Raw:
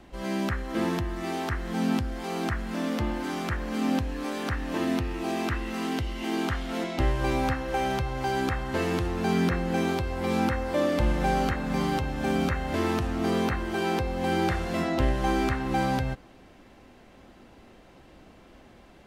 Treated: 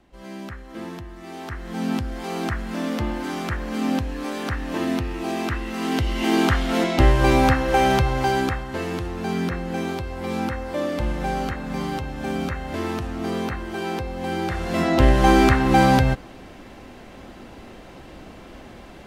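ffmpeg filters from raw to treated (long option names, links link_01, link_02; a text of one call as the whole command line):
ffmpeg -i in.wav -af "volume=20.5dB,afade=type=in:start_time=1.26:duration=0.9:silence=0.316228,afade=type=in:start_time=5.77:duration=0.41:silence=0.473151,afade=type=out:start_time=8.07:duration=0.6:silence=0.316228,afade=type=in:start_time=14.49:duration=0.71:silence=0.281838" out.wav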